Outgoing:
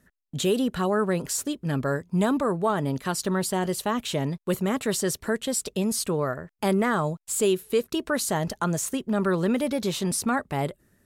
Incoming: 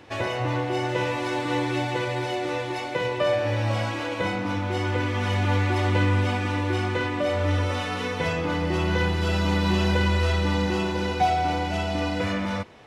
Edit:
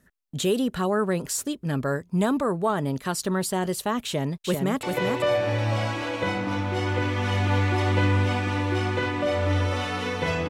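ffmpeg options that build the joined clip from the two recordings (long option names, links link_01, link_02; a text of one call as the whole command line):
ffmpeg -i cue0.wav -i cue1.wav -filter_complex "[0:a]apad=whole_dur=10.49,atrim=end=10.49,atrim=end=4.832[link_01];[1:a]atrim=start=2.808:end=8.47[link_02];[link_01][link_02]acrossfade=duration=0.004:curve1=hsin:curve2=hsin,asplit=2[link_03][link_04];[link_04]afade=type=in:start_time=4.05:duration=0.01,afade=type=out:start_time=4.83:duration=0.01,aecho=0:1:390|780|1170:0.595662|0.0893493|0.0134024[link_05];[link_03][link_05]amix=inputs=2:normalize=0" out.wav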